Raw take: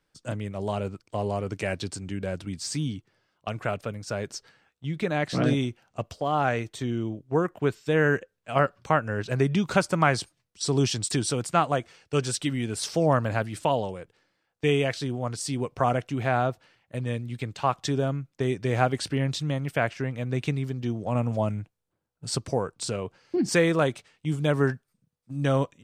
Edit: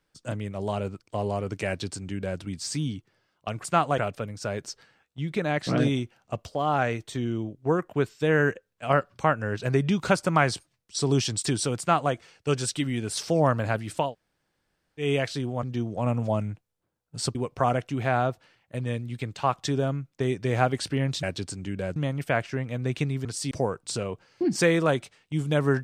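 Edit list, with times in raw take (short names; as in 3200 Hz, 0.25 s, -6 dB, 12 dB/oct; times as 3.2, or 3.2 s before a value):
1.67–2.4 copy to 19.43
11.45–11.79 copy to 3.64
13.73–14.7 room tone, crossfade 0.16 s
15.29–15.55 swap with 20.72–22.44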